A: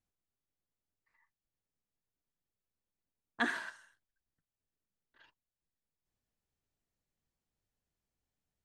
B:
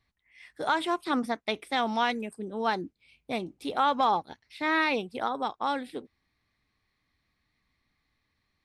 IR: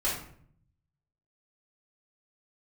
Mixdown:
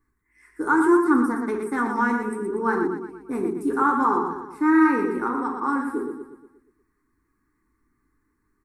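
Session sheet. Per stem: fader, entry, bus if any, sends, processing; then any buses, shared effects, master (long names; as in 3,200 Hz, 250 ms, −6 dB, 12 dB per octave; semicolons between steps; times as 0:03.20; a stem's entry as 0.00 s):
−14.5 dB, 0.30 s, no send, no echo send, no processing
−1.5 dB, 0.00 s, send −7.5 dB, echo send −4 dB, no processing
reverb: on, RT60 0.60 s, pre-delay 3 ms
echo: repeating echo 119 ms, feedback 51%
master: drawn EQ curve 160 Hz 0 dB, 400 Hz +13 dB, 610 Hz −21 dB, 940 Hz +2 dB, 1,500 Hz +5 dB, 3,400 Hz −28 dB, 7,500 Hz +4 dB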